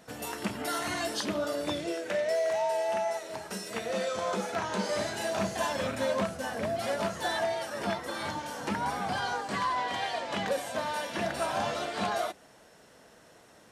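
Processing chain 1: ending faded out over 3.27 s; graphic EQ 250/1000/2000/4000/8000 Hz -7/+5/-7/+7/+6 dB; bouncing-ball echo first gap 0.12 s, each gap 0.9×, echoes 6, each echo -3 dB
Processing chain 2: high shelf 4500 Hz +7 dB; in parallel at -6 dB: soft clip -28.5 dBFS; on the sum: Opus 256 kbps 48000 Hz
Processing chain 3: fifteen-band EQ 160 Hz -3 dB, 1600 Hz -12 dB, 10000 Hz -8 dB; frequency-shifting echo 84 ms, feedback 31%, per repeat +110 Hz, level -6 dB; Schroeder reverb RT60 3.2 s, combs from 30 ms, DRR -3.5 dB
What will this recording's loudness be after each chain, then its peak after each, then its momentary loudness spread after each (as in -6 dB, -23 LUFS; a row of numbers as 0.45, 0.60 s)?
-27.5, -28.5, -27.5 LUFS; -14.0, -16.5, -13.5 dBFS; 5, 4, 7 LU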